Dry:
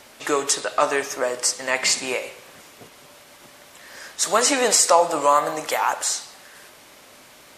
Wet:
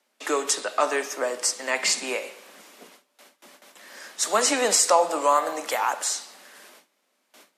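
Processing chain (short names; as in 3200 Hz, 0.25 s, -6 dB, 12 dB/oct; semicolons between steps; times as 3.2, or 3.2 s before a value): gate with hold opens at -36 dBFS; steep high-pass 180 Hz 96 dB/oct; gain -3 dB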